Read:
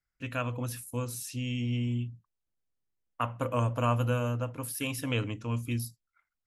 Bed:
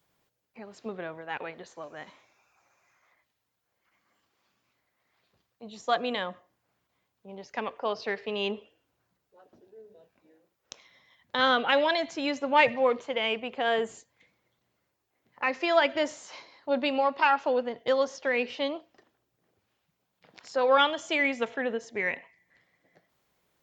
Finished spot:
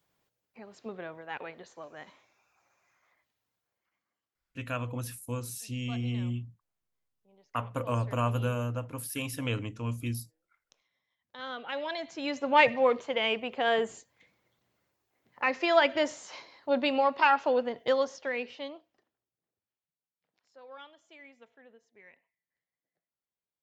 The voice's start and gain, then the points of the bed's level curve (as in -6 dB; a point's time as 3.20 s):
4.35 s, -1.5 dB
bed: 3.56 s -3.5 dB
4.31 s -20 dB
11.23 s -20 dB
12.51 s 0 dB
17.84 s 0 dB
20.09 s -26.5 dB